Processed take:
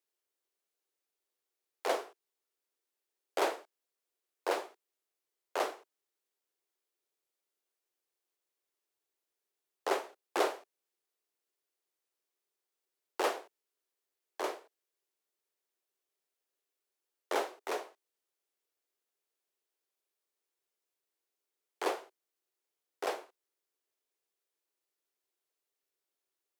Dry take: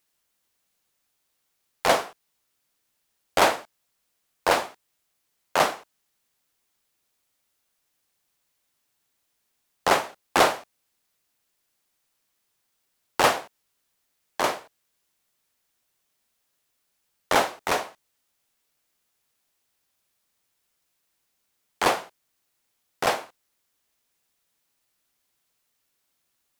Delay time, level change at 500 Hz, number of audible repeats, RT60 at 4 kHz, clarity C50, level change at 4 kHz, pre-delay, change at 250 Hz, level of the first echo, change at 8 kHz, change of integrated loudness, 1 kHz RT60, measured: no echo audible, −9.0 dB, no echo audible, no reverb audible, no reverb audible, −14.5 dB, no reverb audible, −10.5 dB, no echo audible, −14.5 dB, −12.0 dB, no reverb audible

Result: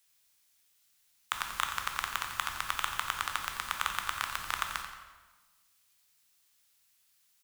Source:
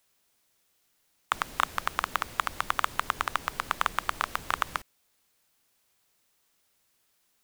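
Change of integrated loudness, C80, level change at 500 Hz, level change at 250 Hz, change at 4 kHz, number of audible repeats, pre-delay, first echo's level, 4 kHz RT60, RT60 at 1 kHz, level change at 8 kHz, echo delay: −3.5 dB, 5.5 dB, −11.0 dB, −10.0 dB, +0.5 dB, 1, 11 ms, −10.0 dB, 1.0 s, 1.3 s, +2.0 dB, 88 ms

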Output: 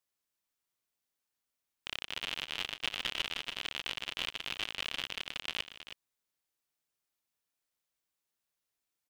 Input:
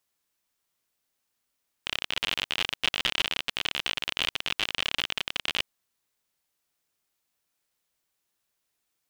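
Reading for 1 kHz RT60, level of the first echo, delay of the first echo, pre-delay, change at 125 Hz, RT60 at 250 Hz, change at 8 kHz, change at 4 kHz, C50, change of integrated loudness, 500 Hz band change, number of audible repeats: no reverb audible, −17.5 dB, 154 ms, no reverb audible, −8.0 dB, no reverb audible, −8.0 dB, −8.0 dB, no reverb audible, −8.0 dB, −8.0 dB, 2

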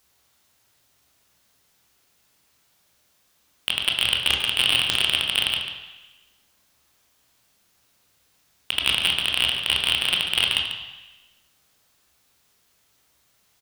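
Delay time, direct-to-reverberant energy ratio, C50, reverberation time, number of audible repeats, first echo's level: 143 ms, 1.0 dB, 4.0 dB, 1.1 s, 1, −10.5 dB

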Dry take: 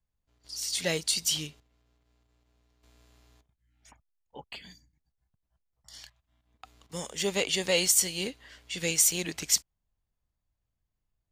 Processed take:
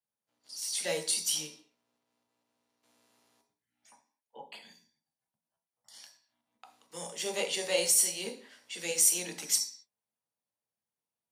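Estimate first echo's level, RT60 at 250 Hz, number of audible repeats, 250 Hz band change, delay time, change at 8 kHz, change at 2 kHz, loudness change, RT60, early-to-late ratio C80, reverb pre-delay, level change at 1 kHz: no echo audible, 0.55 s, no echo audible, −8.5 dB, no echo audible, −1.0 dB, −5.0 dB, −2.0 dB, 0.45 s, 15.0 dB, 8 ms, −1.5 dB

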